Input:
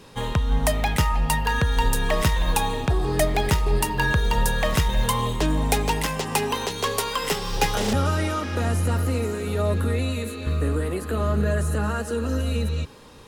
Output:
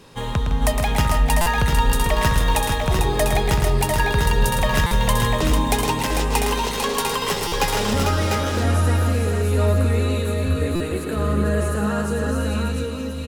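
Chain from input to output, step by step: tapped delay 0.111/0.159/0.297/0.447/0.697/0.712 s -6.5/-10.5/-17.5/-5.5/-5/-10 dB; stuck buffer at 1.41/4.86/7.47/10.75, samples 256, times 8

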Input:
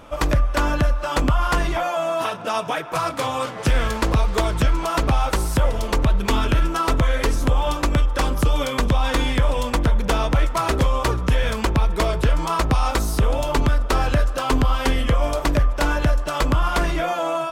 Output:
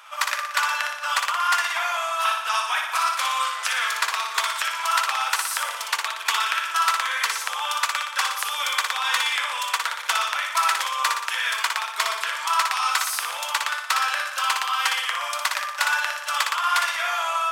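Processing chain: HPF 1100 Hz 24 dB/oct; on a send: flutter echo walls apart 10.2 m, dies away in 0.75 s; on the sum: gain +3.5 dB

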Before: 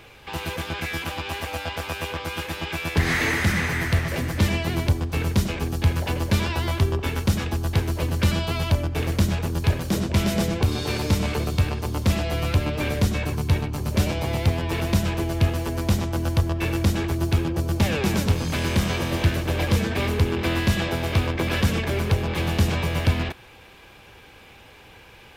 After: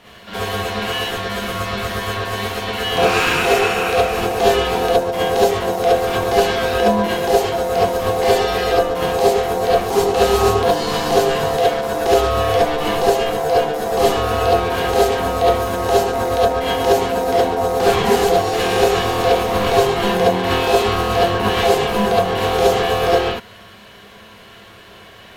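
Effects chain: ring modulator 600 Hz; non-linear reverb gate 90 ms rising, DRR -7 dB; gain +1 dB

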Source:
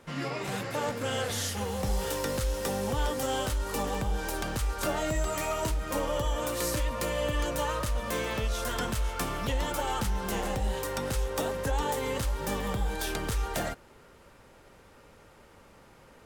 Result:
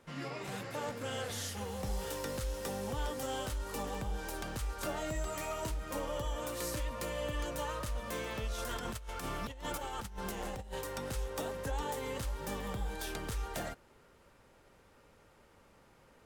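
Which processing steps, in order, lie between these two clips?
8.58–10.81 negative-ratio compressor -32 dBFS, ratio -0.5; gain -7.5 dB

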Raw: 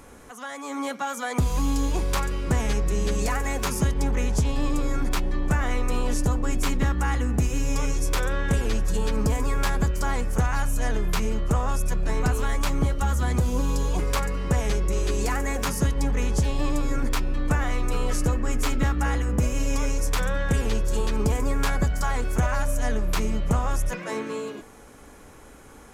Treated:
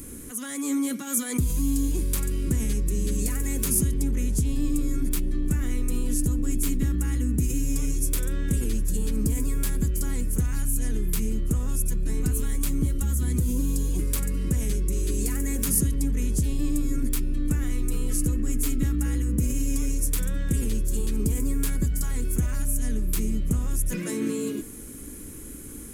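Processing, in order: in parallel at -1 dB: negative-ratio compressor -32 dBFS, ratio -1; on the sum: EQ curve 170 Hz 0 dB, 310 Hz +3 dB, 740 Hz -21 dB, 2000 Hz -9 dB, 5700 Hz -4 dB, 10000 Hz +10 dB; gain -3 dB

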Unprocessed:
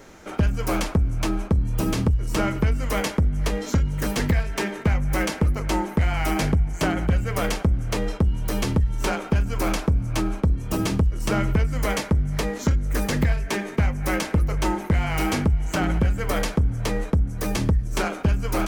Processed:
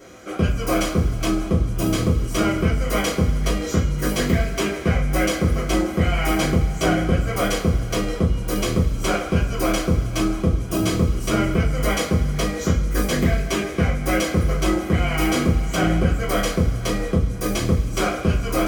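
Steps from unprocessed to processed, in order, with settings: notch comb 900 Hz; two-slope reverb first 0.28 s, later 2.3 s, from -18 dB, DRR -6 dB; gain -2 dB

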